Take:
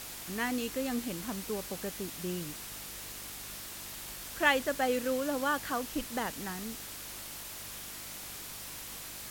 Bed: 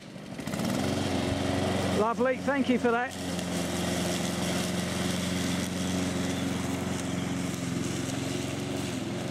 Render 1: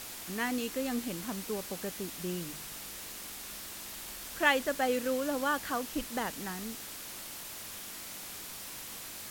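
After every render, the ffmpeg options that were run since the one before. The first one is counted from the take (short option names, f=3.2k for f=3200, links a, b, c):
-af "bandreject=f=50:t=h:w=4,bandreject=f=100:t=h:w=4,bandreject=f=150:t=h:w=4"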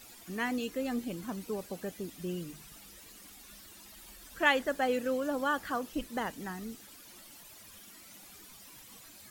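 -af "afftdn=nr=13:nf=-44"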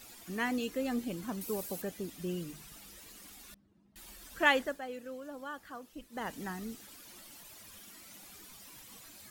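-filter_complex "[0:a]asettb=1/sr,asplit=3[a][b][c];[a]atrim=end=1.414[d];[b]atrim=start=1.41:end=1.82,asetpts=PTS-STARTPTS,afade=t=in:d=0.004:c=qsin,afade=t=out:st=0.406:d=0.004:c=qsin,equalizer=f=15k:w=0.34:g=12.5[e];[c]atrim=start=1.816[f];[d][e]acrossfade=d=0.004:c1=hsin:c2=qsin[g];[g][f]acrossfade=d=0.004:c1=qsin:c2=hsin,asettb=1/sr,asplit=3[h][i][j];[h]atrim=end=3.544[k];[i]atrim=start=3.54:end=3.96,asetpts=PTS-STARTPTS,afade=t=in:d=0.004:c=qsin,afade=t=out:st=0.416:d=0.004:c=qsin,bandpass=f=160:t=q:w=1.7[l];[j]atrim=start=3.956[m];[k][l]acrossfade=d=0.004:c1=hsin:c2=qsin[n];[n][m]acrossfade=d=0.004:c1=qsin:c2=hsin,asplit=3[o][p][q];[o]atrim=end=4.81,asetpts=PTS-STARTPTS,afade=t=out:st=4.57:d=0.24:silence=0.251189[r];[p]atrim=start=4.81:end=6.1,asetpts=PTS-STARTPTS,volume=-12dB[s];[q]atrim=start=6.1,asetpts=PTS-STARTPTS,afade=t=in:d=0.24:silence=0.251189[t];[r][s][t]concat=n=3:v=0:a=1"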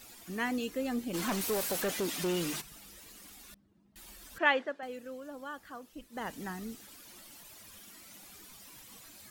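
-filter_complex "[0:a]asplit=3[a][b][c];[a]afade=t=out:st=1.13:d=0.02[d];[b]asplit=2[e][f];[f]highpass=f=720:p=1,volume=26dB,asoftclip=type=tanh:threshold=-24dB[g];[e][g]amix=inputs=2:normalize=0,lowpass=f=6.7k:p=1,volume=-6dB,afade=t=in:st=1.13:d=0.02,afade=t=out:st=2.6:d=0.02[h];[c]afade=t=in:st=2.6:d=0.02[i];[d][h][i]amix=inputs=3:normalize=0,asettb=1/sr,asplit=3[j][k][l];[j]atrim=end=4.384[m];[k]atrim=start=4.38:end=4.83,asetpts=PTS-STARTPTS,afade=t=in:d=0.004:c=qsin,afade=t=out:st=0.446:d=0.004:c=qsin,highpass=290,lowpass=3.2k[n];[l]atrim=start=4.826[o];[m][n]acrossfade=d=0.004:c1=hsin:c2=qsin[p];[p][o]acrossfade=d=0.004:c1=qsin:c2=hsin"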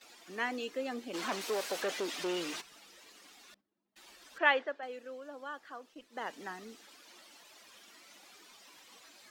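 -filter_complex "[0:a]agate=range=-10dB:threshold=-58dB:ratio=16:detection=peak,acrossover=split=290 6700:gain=0.0708 1 0.158[a][b][c];[a][b][c]amix=inputs=3:normalize=0"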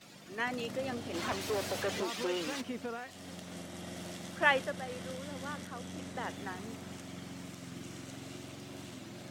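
-filter_complex "[1:a]volume=-14.5dB[a];[0:a][a]amix=inputs=2:normalize=0"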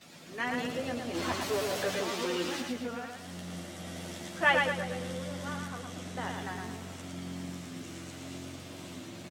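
-filter_complex "[0:a]asplit=2[a][b];[b]adelay=12,volume=-5dB[c];[a][c]amix=inputs=2:normalize=0,asplit=2[d][e];[e]aecho=0:1:112|224|336|448|560:0.631|0.246|0.096|0.0374|0.0146[f];[d][f]amix=inputs=2:normalize=0"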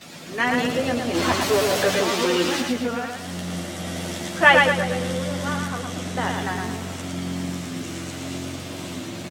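-af "volume=11.5dB,alimiter=limit=-1dB:level=0:latency=1"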